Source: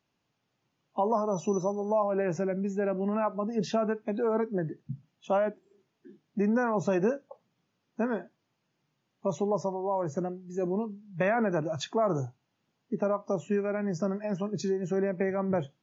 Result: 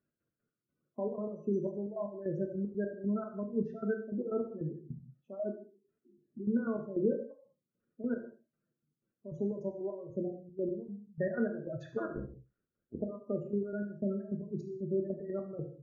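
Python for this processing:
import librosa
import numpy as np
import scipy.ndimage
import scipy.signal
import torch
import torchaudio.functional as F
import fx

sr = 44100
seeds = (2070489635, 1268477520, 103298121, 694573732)

p1 = fx.cycle_switch(x, sr, every=2, mode='muted', at=(11.96, 12.97), fade=0.02)
p2 = fx.spec_gate(p1, sr, threshold_db=-15, keep='strong')
p3 = fx.curve_eq(p2, sr, hz=(560.0, 870.0, 1400.0, 3400.0), db=(0, -22, 3, -22))
p4 = fx.step_gate(p3, sr, bpm=153, pattern='x.x.x..x', floor_db=-12.0, edge_ms=4.5)
p5 = p4 + fx.echo_single(p4, sr, ms=71, db=-16.5, dry=0)
p6 = fx.rev_gated(p5, sr, seeds[0], gate_ms=220, shape='falling', drr_db=3.0)
y = F.gain(torch.from_numpy(p6), -4.5).numpy()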